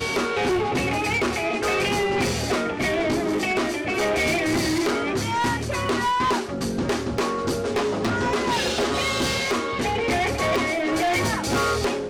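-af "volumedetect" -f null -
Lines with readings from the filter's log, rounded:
mean_volume: -23.4 dB
max_volume: -17.1 dB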